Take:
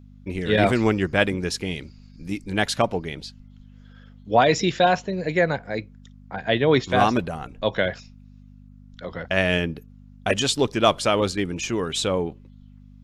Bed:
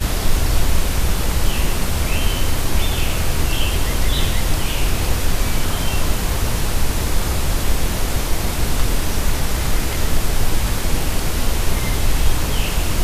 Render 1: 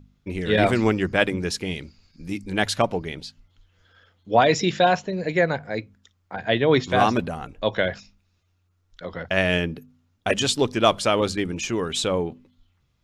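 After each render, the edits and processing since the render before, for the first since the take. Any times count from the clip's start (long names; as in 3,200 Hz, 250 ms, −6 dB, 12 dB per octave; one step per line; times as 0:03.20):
hum removal 50 Hz, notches 5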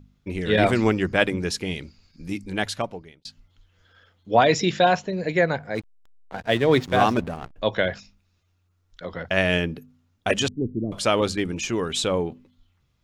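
0:02.32–0:03.25: fade out
0:05.75–0:07.56: slack as between gear wheels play −30.5 dBFS
0:10.48–0:10.92: inverse Chebyshev low-pass filter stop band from 1,500 Hz, stop band 70 dB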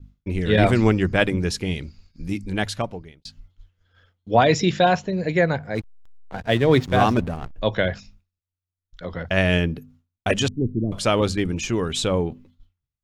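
downward expander −51 dBFS
low-shelf EQ 140 Hz +11 dB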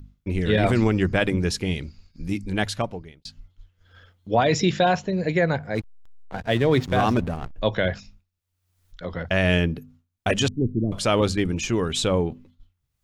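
brickwall limiter −9.5 dBFS, peak gain reduction 7 dB
upward compression, threshold −42 dBFS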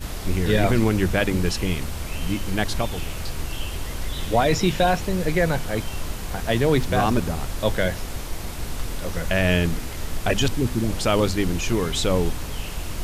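mix in bed −11 dB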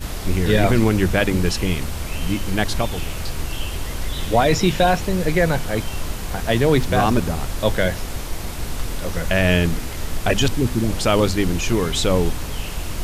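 level +3 dB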